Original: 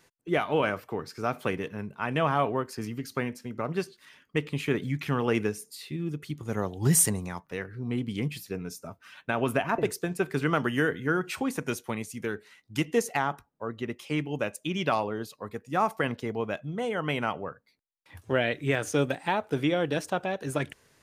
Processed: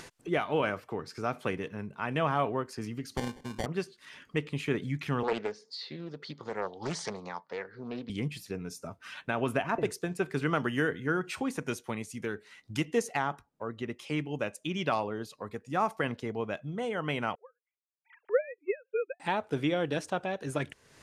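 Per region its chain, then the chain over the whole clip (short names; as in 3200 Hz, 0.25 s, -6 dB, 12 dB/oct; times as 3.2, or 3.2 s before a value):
3.17–3.66 LPF 9800 Hz + sample-rate reducer 1300 Hz
5.23–8.1 speaker cabinet 290–5000 Hz, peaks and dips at 320 Hz -8 dB, 510 Hz +4 dB, 900 Hz +5 dB, 2600 Hz -10 dB, 4500 Hz +8 dB + Doppler distortion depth 0.53 ms
17.35–19.2 sine-wave speech + dynamic EQ 480 Hz, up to +4 dB, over -37 dBFS, Q 3.5 + upward expander 2.5:1, over -37 dBFS
whole clip: LPF 10000 Hz 12 dB/oct; upward compressor, threshold -31 dBFS; gain -3 dB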